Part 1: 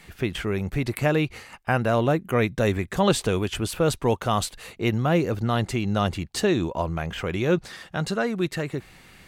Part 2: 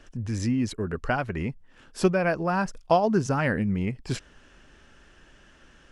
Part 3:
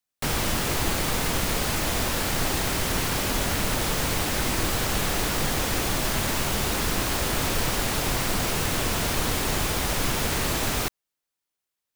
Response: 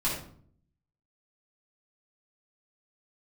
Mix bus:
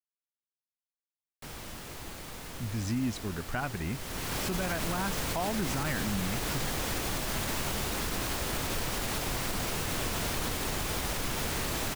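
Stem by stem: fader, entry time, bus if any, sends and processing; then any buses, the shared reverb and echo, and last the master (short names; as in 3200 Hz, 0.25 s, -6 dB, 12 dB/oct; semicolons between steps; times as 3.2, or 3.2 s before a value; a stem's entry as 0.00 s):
off
-4.0 dB, 2.45 s, no send, bell 490 Hz -8 dB 0.72 oct
3.89 s -17.5 dB -> 4.4 s -6 dB, 1.20 s, no send, dry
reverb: off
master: limiter -22 dBFS, peak gain reduction 10 dB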